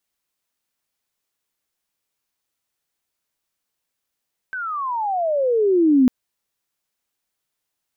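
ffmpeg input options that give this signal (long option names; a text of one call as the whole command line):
ffmpeg -f lavfi -i "aevalsrc='pow(10,(-10+15*(t/1.55-1))/20)*sin(2*PI*1560*1.55/(-32*log(2)/12)*(exp(-32*log(2)/12*t/1.55)-1))':duration=1.55:sample_rate=44100" out.wav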